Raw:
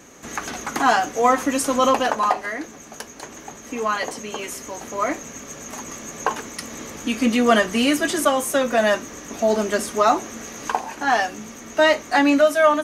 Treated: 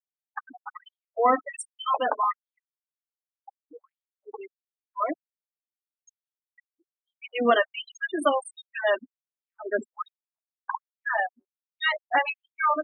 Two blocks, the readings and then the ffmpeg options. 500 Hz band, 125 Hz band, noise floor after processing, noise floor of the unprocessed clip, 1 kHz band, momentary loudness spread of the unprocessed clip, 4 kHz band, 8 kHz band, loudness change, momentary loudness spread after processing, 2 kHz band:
-9.0 dB, under -20 dB, under -85 dBFS, -41 dBFS, -7.0 dB, 17 LU, -9.5 dB, -19.5 dB, -6.5 dB, 19 LU, -6.5 dB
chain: -af "afftfilt=real='re*gte(hypot(re,im),0.178)':imag='im*gte(hypot(re,im),0.178)':win_size=1024:overlap=0.75,afftfilt=real='re*gte(b*sr/1024,210*pow(3200/210,0.5+0.5*sin(2*PI*1.3*pts/sr)))':imag='im*gte(b*sr/1024,210*pow(3200/210,0.5+0.5*sin(2*PI*1.3*pts/sr)))':win_size=1024:overlap=0.75,volume=0.668"

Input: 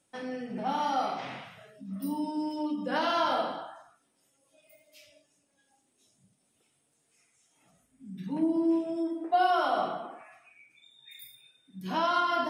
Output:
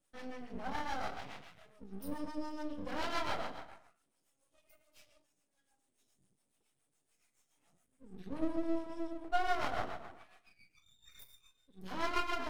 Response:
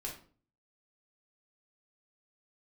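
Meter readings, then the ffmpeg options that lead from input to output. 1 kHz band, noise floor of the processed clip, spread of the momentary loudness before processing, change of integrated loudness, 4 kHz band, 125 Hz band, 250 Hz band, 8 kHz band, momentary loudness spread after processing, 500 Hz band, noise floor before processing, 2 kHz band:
-10.5 dB, -81 dBFS, 20 LU, -9.5 dB, -8.0 dB, -6.5 dB, -10.5 dB, no reading, 21 LU, -9.5 dB, -73 dBFS, -5.5 dB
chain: -filter_complex "[0:a]acrossover=split=490[s0][s1];[s0]aeval=exprs='val(0)*(1-0.7/2+0.7/2*cos(2*PI*7.1*n/s))':c=same[s2];[s1]aeval=exprs='val(0)*(1-0.7/2-0.7/2*cos(2*PI*7.1*n/s))':c=same[s3];[s2][s3]amix=inputs=2:normalize=0,aeval=exprs='max(val(0),0)':c=same,asplit=2[s4][s5];[1:a]atrim=start_sample=2205[s6];[s5][s6]afir=irnorm=-1:irlink=0,volume=0.0794[s7];[s4][s7]amix=inputs=2:normalize=0,volume=0.794"

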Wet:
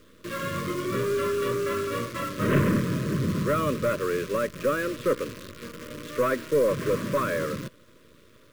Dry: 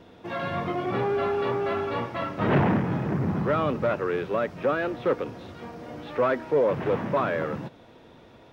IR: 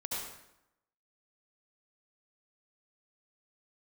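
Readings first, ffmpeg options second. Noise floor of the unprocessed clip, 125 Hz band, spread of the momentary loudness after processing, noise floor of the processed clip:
-52 dBFS, 0.0 dB, 12 LU, -55 dBFS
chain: -af "aeval=exprs='0.299*(cos(1*acos(clip(val(0)/0.299,-1,1)))-cos(1*PI/2))+0.0376*(cos(2*acos(clip(val(0)/0.299,-1,1)))-cos(2*PI/2))':c=same,acrusher=bits=7:dc=4:mix=0:aa=0.000001,asuperstop=centerf=790:order=12:qfactor=2.1"

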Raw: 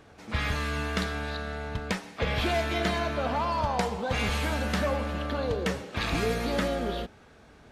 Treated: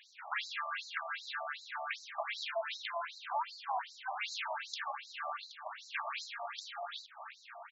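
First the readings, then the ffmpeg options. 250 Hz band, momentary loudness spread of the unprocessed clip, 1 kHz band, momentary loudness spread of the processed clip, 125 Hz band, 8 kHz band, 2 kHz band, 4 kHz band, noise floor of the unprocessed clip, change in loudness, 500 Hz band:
under -40 dB, 7 LU, -7.0 dB, 6 LU, under -40 dB, -10.5 dB, -7.5 dB, -7.5 dB, -54 dBFS, -10.5 dB, -15.5 dB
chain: -filter_complex "[0:a]asplit=2[s0][s1];[s1]adelay=1224,volume=0.178,highshelf=f=4000:g=-27.6[s2];[s0][s2]amix=inputs=2:normalize=0,acrossover=split=220[s3][s4];[s4]acompressor=threshold=0.0141:ratio=10[s5];[s3][s5]amix=inputs=2:normalize=0,afftfilt=real='re*between(b*sr/1024,830*pow(5500/830,0.5+0.5*sin(2*PI*2.6*pts/sr))/1.41,830*pow(5500/830,0.5+0.5*sin(2*PI*2.6*pts/sr))*1.41)':imag='im*between(b*sr/1024,830*pow(5500/830,0.5+0.5*sin(2*PI*2.6*pts/sr))/1.41,830*pow(5500/830,0.5+0.5*sin(2*PI*2.6*pts/sr))*1.41)':win_size=1024:overlap=0.75,volume=2.37"

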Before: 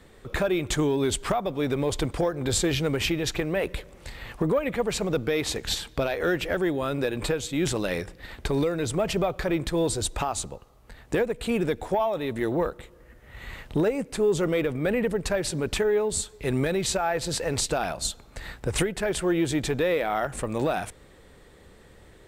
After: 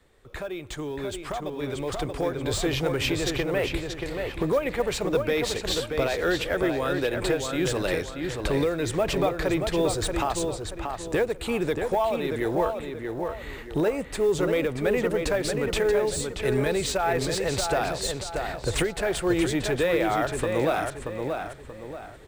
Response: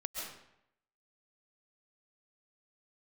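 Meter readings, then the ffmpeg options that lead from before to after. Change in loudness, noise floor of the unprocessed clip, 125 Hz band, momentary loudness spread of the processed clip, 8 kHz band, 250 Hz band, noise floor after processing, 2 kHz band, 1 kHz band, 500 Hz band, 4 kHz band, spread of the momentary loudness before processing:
0.0 dB, -52 dBFS, -1.0 dB, 9 LU, -2.5 dB, -0.5 dB, -41 dBFS, +1.5 dB, +1.5 dB, +1.0 dB, +0.5 dB, 7 LU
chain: -filter_complex "[0:a]equalizer=f=200:w=1.6:g=-5.5,asplit=2[s0][s1];[s1]adelay=631,lowpass=f=3500:p=1,volume=0.562,asplit=2[s2][s3];[s3]adelay=631,lowpass=f=3500:p=1,volume=0.38,asplit=2[s4][s5];[s5]adelay=631,lowpass=f=3500:p=1,volume=0.38,asplit=2[s6][s7];[s7]adelay=631,lowpass=f=3500:p=1,volume=0.38,asplit=2[s8][s9];[s9]adelay=631,lowpass=f=3500:p=1,volume=0.38[s10];[s0][s2][s4][s6][s8][s10]amix=inputs=6:normalize=0,acrossover=split=420|940|4400[s11][s12][s13][s14];[s12]acrusher=bits=6:mode=log:mix=0:aa=0.000001[s15];[s14]asoftclip=type=tanh:threshold=0.0299[s16];[s11][s15][s13][s16]amix=inputs=4:normalize=0,dynaudnorm=f=600:g=7:m=3.35,volume=0.376"

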